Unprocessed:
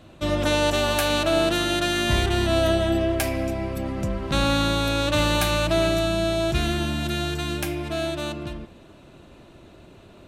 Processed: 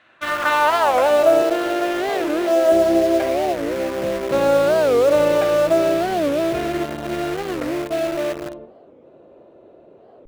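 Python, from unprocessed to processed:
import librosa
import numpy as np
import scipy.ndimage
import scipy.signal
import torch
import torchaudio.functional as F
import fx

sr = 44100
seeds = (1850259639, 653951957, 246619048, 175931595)

p1 = fx.room_early_taps(x, sr, ms=(48, 66), db=(-12.5, -12.0))
p2 = fx.filter_sweep_bandpass(p1, sr, from_hz=1800.0, to_hz=510.0, start_s=0.04, end_s=1.43, q=3.0)
p3 = fx.bandpass_edges(p2, sr, low_hz=330.0, high_hz=5800.0, at=(1.42, 2.72))
p4 = fx.quant_dither(p3, sr, seeds[0], bits=6, dither='none')
p5 = p3 + (p4 * 10.0 ** (-6.5 / 20.0))
p6 = fx.dynamic_eq(p5, sr, hz=1900.0, q=0.92, threshold_db=-46.0, ratio=4.0, max_db=5)
p7 = fx.record_warp(p6, sr, rpm=45.0, depth_cents=250.0)
y = p7 * 10.0 ** (9.0 / 20.0)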